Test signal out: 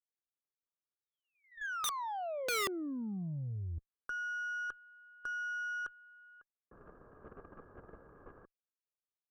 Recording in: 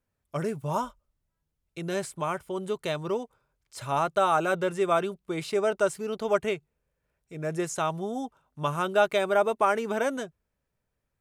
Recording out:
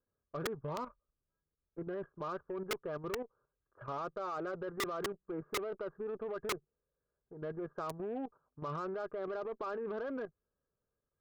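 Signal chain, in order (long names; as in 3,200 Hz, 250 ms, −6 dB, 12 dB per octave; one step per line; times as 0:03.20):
Chebyshev low-pass with heavy ripple 1,700 Hz, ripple 9 dB
brickwall limiter −25.5 dBFS
output level in coarse steps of 10 dB
wrap-around overflow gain 30.5 dB
harmonic generator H 3 −45 dB, 8 −28 dB, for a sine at −30.5 dBFS
level +1.5 dB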